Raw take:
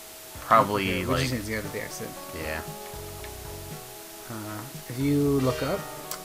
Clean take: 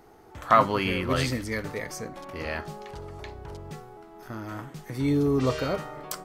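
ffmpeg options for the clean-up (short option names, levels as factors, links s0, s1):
-af "bandreject=f=640:w=30,afwtdn=0.0071"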